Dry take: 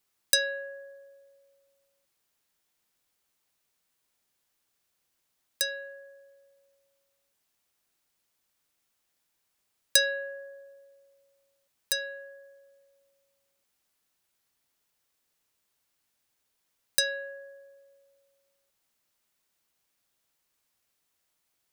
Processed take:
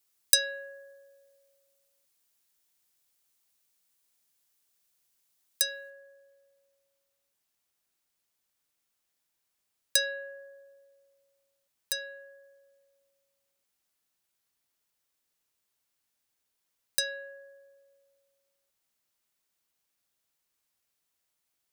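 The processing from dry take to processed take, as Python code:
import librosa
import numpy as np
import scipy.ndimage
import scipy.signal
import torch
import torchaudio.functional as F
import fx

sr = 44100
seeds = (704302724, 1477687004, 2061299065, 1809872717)

y = fx.high_shelf(x, sr, hz=3800.0, db=fx.steps((0.0, 10.0), (5.89, 2.5)))
y = y * librosa.db_to_amplitude(-5.0)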